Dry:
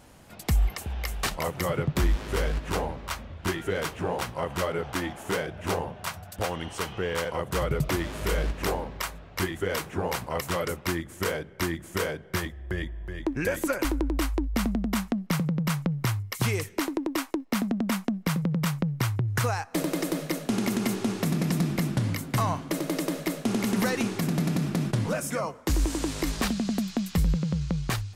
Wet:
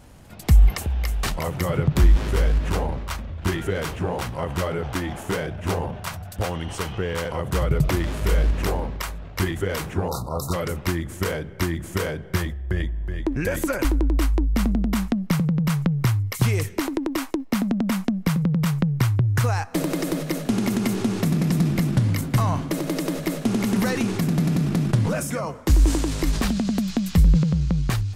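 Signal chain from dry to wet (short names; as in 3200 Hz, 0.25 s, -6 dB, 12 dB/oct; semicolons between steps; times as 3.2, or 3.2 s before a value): low shelf 170 Hz +9.5 dB; transient shaper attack +2 dB, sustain +6 dB; spectral delete 10.08–10.54, 1400–3600 Hz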